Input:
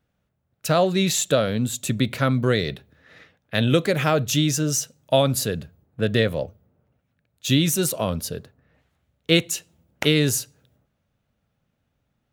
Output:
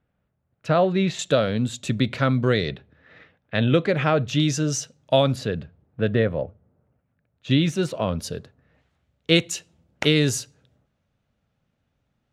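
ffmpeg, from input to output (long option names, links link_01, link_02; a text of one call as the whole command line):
ffmpeg -i in.wav -af "asetnsamples=nb_out_samples=441:pad=0,asendcmd='1.19 lowpass f 5100;2.71 lowpass f 3100;4.4 lowpass f 5700;5.36 lowpass f 3100;6.13 lowpass f 1800;7.51 lowpass f 3300;8.19 lowpass f 7300',lowpass=2500" out.wav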